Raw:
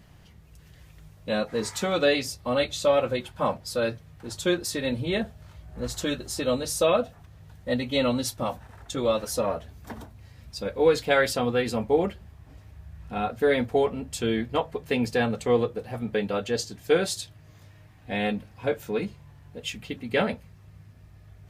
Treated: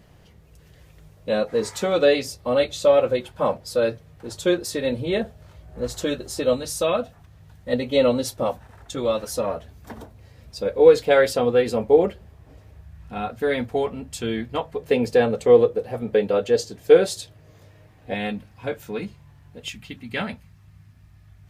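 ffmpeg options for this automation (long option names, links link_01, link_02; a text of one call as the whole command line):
ffmpeg -i in.wav -af "asetnsamples=nb_out_samples=441:pad=0,asendcmd='6.53 equalizer g -0.5;7.73 equalizer g 9.5;8.51 equalizer g 2;9.97 equalizer g 8;12.81 equalizer g -1;14.76 equalizer g 9.5;18.14 equalizer g -2.5;19.68 equalizer g -10',equalizer=frequency=480:width_type=o:width=0.99:gain=7" out.wav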